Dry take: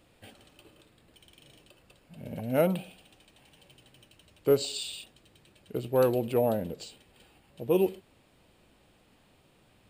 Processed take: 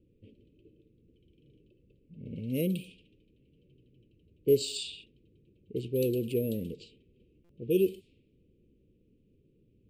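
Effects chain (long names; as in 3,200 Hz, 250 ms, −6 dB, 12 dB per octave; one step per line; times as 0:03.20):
low-pass that shuts in the quiet parts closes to 850 Hz, open at −26.5 dBFS
elliptic band-stop filter 440–2,600 Hz, stop band 40 dB
buffer that repeats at 0:07.44, samples 256, times 8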